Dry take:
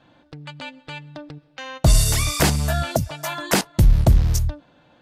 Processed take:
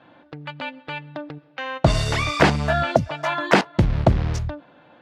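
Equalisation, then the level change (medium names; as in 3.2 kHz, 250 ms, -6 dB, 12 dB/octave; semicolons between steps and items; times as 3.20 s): high-pass 260 Hz 6 dB/octave; low-pass 2.6 kHz 12 dB/octave; +6.0 dB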